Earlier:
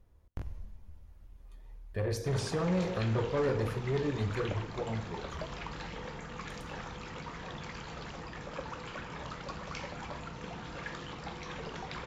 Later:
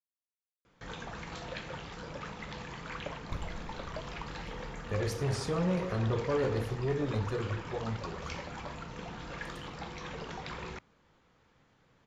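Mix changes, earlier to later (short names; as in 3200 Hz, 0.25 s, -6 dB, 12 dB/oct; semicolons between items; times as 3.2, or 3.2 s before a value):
speech: entry +2.95 s; background: entry -1.45 s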